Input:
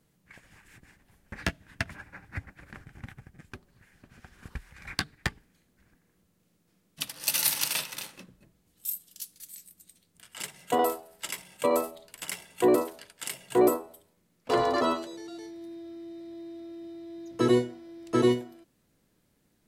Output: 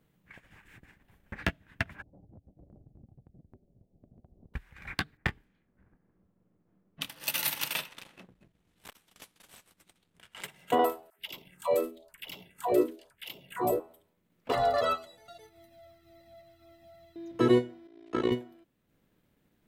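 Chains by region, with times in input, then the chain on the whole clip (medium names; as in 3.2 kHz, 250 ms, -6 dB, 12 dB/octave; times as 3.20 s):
2.02–4.54 s: elliptic low-pass 670 Hz, stop band 60 dB + compression 10:1, threshold -50 dBFS
5.17–7.16 s: level-controlled noise filter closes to 1 kHz, open at -34.5 dBFS + doubling 26 ms -9 dB
7.88–10.43 s: CVSD coder 64 kbps + treble shelf 5.8 kHz -3 dB + transformer saturation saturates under 2.8 kHz
11.10–13.80 s: phase shifter stages 4, 1 Hz, lowest notch 130–1700 Hz + phase dispersion lows, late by 93 ms, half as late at 470 Hz
14.52–17.16 s: treble shelf 7.2 kHz +11 dB + comb 1.5 ms, depth 86% + Shepard-style flanger falling 1.8 Hz
17.87–18.32 s: bass shelf 210 Hz -9.5 dB + AM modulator 57 Hz, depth 75% + low-pass 7 kHz
whole clip: high-order bell 7.2 kHz -8.5 dB; transient shaper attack 0 dB, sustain -5 dB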